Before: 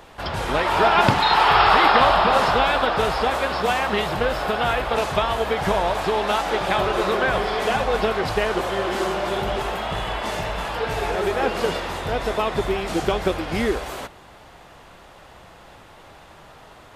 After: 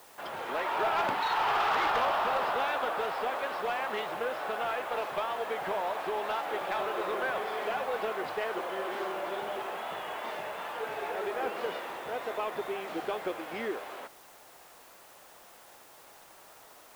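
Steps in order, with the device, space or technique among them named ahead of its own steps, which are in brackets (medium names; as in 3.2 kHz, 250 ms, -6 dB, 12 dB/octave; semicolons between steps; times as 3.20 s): tape answering machine (band-pass 350–2900 Hz; saturation -13 dBFS, distortion -15 dB; wow and flutter; white noise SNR 24 dB); trim -9 dB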